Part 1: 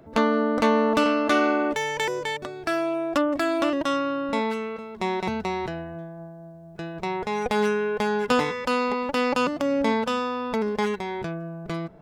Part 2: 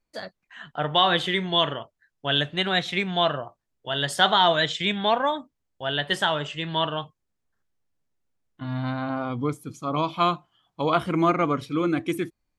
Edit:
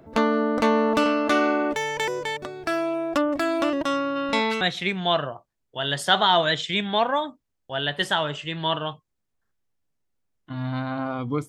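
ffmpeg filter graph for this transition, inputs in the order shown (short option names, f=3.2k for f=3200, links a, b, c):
-filter_complex "[0:a]asplit=3[a][b][c];[a]afade=t=out:st=4.15:d=0.02[d];[b]equalizer=f=3.8k:w=0.48:g=10,afade=t=in:st=4.15:d=0.02,afade=t=out:st=4.61:d=0.02[e];[c]afade=t=in:st=4.61:d=0.02[f];[d][e][f]amix=inputs=3:normalize=0,apad=whole_dur=11.48,atrim=end=11.48,atrim=end=4.612[g];[1:a]atrim=start=2.718:end=9.59[h];[g][h]acrossfade=d=0.004:c1=hsin:c2=hsin"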